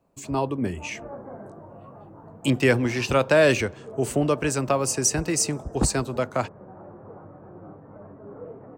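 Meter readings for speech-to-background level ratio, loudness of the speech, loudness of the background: 20.0 dB, −23.5 LKFS, −43.5 LKFS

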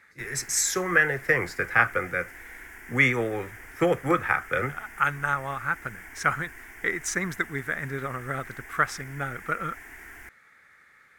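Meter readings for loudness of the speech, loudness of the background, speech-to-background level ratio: −26.5 LKFS, −44.0 LKFS, 17.5 dB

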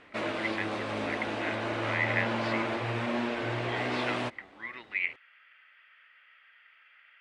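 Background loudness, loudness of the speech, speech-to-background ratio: −32.5 LKFS, −36.0 LKFS, −3.5 dB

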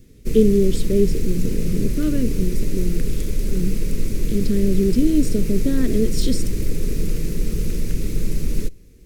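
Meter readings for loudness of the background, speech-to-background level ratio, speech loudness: −27.0 LKFS, 4.5 dB, −22.5 LKFS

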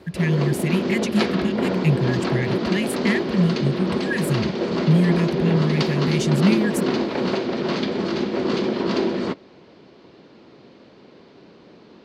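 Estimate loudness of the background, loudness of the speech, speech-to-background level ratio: −23.5 LKFS, −23.0 LKFS, 0.5 dB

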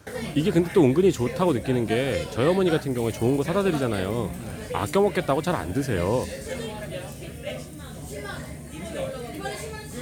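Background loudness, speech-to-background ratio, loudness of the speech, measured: −34.5 LKFS, 10.5 dB, −24.0 LKFS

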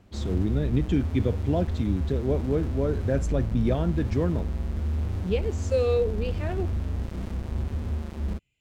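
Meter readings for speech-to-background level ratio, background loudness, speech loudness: 3.0 dB, −31.0 LKFS, −28.0 LKFS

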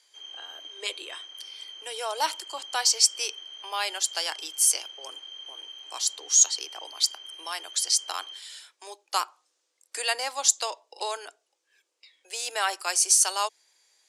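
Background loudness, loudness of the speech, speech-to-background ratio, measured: −40.5 LKFS, −25.0 LKFS, 15.5 dB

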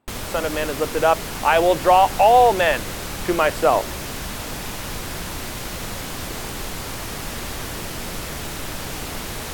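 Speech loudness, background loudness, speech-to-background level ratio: −18.5 LKFS, −29.5 LKFS, 11.0 dB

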